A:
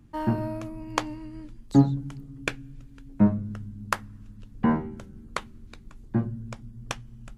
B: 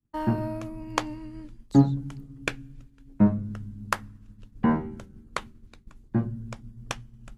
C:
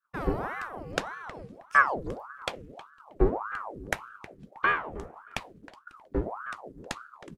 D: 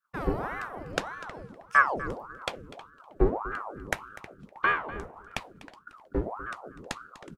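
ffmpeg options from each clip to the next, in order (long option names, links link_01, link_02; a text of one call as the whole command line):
ffmpeg -i in.wav -af "agate=range=-33dB:threshold=-39dB:ratio=3:detection=peak" out.wav
ffmpeg -i in.wav -filter_complex "[0:a]aeval=exprs='if(lt(val(0),0),0.708*val(0),val(0))':channel_layout=same,asplit=2[link_01][link_02];[link_02]adelay=316,lowpass=frequency=2800:poles=1,volume=-16dB,asplit=2[link_03][link_04];[link_04]adelay=316,lowpass=frequency=2800:poles=1,volume=0.16[link_05];[link_01][link_03][link_05]amix=inputs=3:normalize=0,aeval=exprs='val(0)*sin(2*PI*800*n/s+800*0.8/1.7*sin(2*PI*1.7*n/s))':channel_layout=same,volume=1dB" out.wav
ffmpeg -i in.wav -af "aecho=1:1:247:0.133" out.wav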